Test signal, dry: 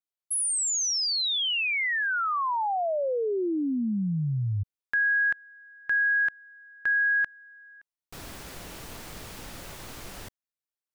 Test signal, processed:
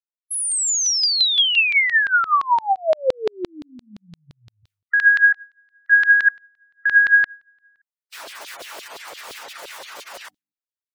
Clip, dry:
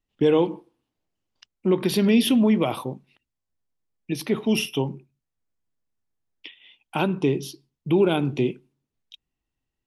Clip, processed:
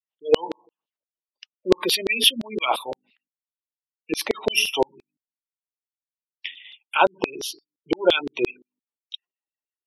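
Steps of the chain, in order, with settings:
notch filter 760 Hz, Q 25
noise gate with hold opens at −42 dBFS, closes at −46 dBFS, hold 61 ms, range −16 dB
gate on every frequency bin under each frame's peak −25 dB strong
mains-hum notches 50/100/150/200/250/300 Hz
automatic gain control gain up to 5.5 dB
auto-filter high-pass saw down 5.8 Hz 450–4,000 Hz
level +1 dB

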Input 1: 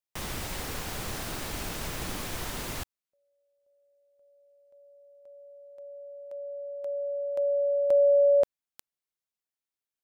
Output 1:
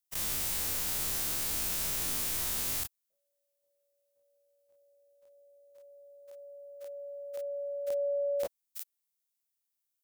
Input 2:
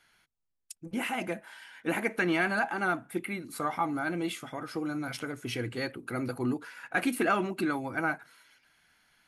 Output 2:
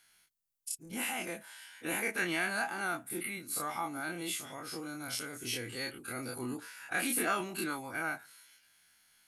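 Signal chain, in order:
every bin's largest magnitude spread in time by 60 ms
first-order pre-emphasis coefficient 0.8
level +2.5 dB

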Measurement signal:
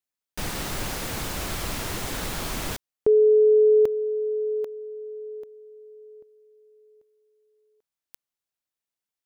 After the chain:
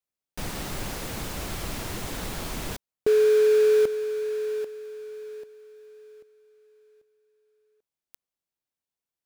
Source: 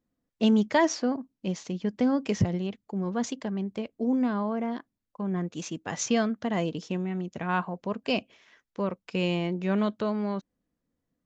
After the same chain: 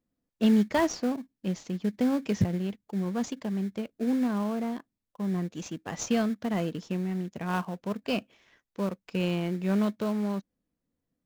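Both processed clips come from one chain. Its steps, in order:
dynamic equaliser 200 Hz, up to +3 dB, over −40 dBFS, Q 3.4
in parallel at −10.5 dB: sample-rate reduction 2,000 Hz, jitter 20%
on the sum: level −4 dB

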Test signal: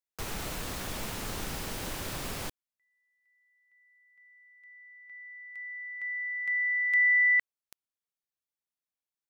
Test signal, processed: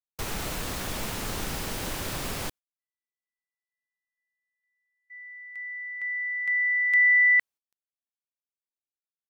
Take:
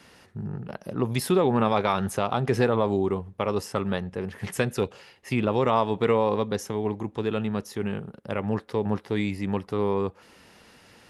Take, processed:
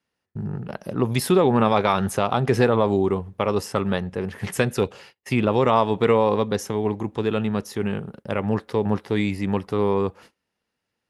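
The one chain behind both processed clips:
noise gate −48 dBFS, range −31 dB
level +4 dB

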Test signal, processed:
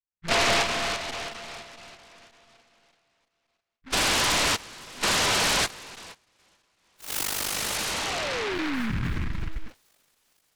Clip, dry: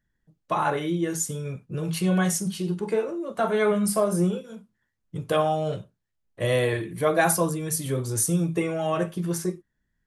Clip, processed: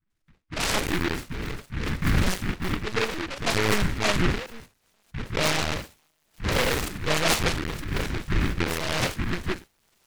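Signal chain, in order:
sub-octave generator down 2 octaves, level +4 dB
low-shelf EQ 150 Hz −4 dB
all-pass dispersion highs, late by 121 ms, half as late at 640 Hz
on a send: delay with a high-pass on its return 451 ms, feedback 71%, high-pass 2,900 Hz, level −19.5 dB
on the sum: linear-prediction vocoder at 8 kHz pitch kept
short delay modulated by noise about 1,600 Hz, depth 0.32 ms
level −1.5 dB

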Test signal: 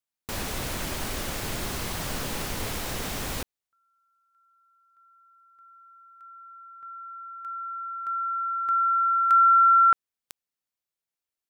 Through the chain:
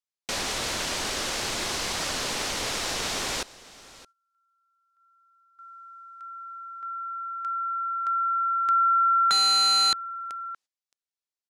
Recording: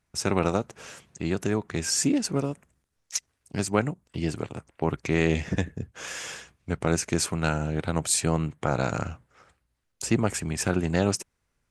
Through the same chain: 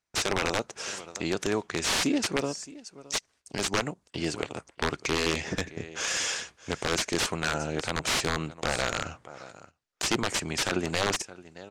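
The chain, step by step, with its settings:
in parallel at +0.5 dB: downward compressor 20 to 1, threshold −35 dBFS
on the sum: bass and treble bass −11 dB, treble +11 dB
on a send: single-tap delay 619 ms −19.5 dB
on the sum: wrap-around overflow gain 15 dB
noise gate −51 dBFS, range −14 dB
low-pass filter 5,200 Hz 12 dB per octave

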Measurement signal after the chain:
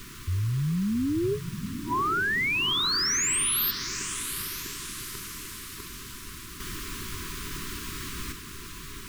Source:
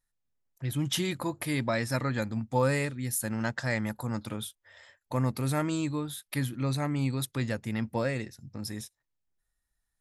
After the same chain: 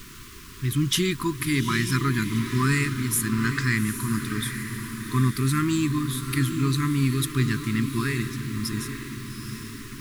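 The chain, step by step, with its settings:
feedback delay with all-pass diffusion 822 ms, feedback 54%, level −8.5 dB
background noise pink −49 dBFS
brick-wall band-stop 430–960 Hz
level +6.5 dB

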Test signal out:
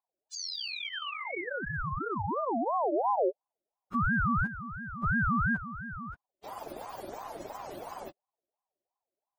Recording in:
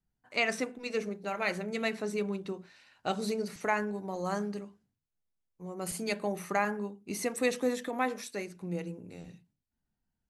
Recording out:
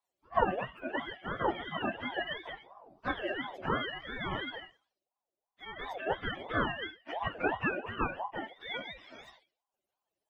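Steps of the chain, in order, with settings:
frequency axis turned over on the octave scale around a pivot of 700 Hz
ring modulator whose carrier an LFO sweeps 690 Hz, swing 35%, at 2.9 Hz
level +2 dB

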